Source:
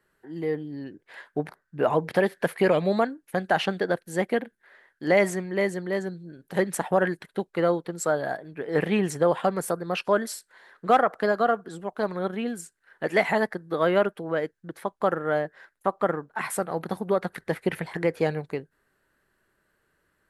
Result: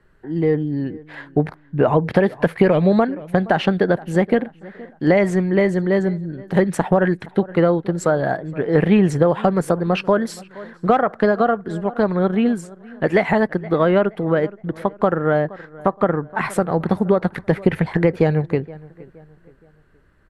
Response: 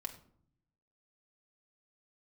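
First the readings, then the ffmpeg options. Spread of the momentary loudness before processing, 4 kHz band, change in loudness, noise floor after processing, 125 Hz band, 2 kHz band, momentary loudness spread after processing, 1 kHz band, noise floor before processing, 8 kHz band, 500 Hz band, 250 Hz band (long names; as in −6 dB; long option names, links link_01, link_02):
13 LU, +2.5 dB, +7.5 dB, −52 dBFS, +13.0 dB, +4.0 dB, 9 LU, +4.5 dB, −73 dBFS, −2.0 dB, +6.5 dB, +11.0 dB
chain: -filter_complex "[0:a]asplit=2[link_01][link_02];[link_02]adelay=470,lowpass=frequency=2600:poles=1,volume=-23dB,asplit=2[link_03][link_04];[link_04]adelay=470,lowpass=frequency=2600:poles=1,volume=0.39,asplit=2[link_05][link_06];[link_06]adelay=470,lowpass=frequency=2600:poles=1,volume=0.39[link_07];[link_01][link_03][link_05][link_07]amix=inputs=4:normalize=0,acompressor=threshold=-23dB:ratio=3,aemphasis=mode=reproduction:type=bsi,volume=8.5dB"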